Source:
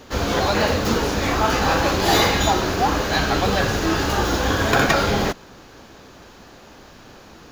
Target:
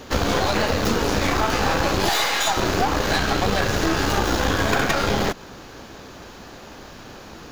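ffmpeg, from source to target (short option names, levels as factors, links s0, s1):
-filter_complex "[0:a]asettb=1/sr,asplit=3[s0][s1][s2];[s0]atrim=end=2.094[s3];[s1]atrim=start=2.09:end=2.57,asetpts=PTS-STARTPTS,afade=t=in:d=0.004:c=qsin,afade=t=out:st=0.476:d=0.004:c=qsin,highpass=750[s4];[s2]atrim=start=2.566[s5];[s3][s4]acrossfade=d=0.004:c1=hsin:c2=qsin[s6];[s6][s5]acrossfade=d=0.004:c1=qsin:c2=hsin,acompressor=threshold=0.0794:ratio=6,aeval=exprs='0.355*(cos(1*acos(clip(val(0)/0.355,-1,1)))-cos(1*PI/2))+0.0316*(cos(8*acos(clip(val(0)/0.355,-1,1)))-cos(8*PI/2))':c=same,volume=1.58"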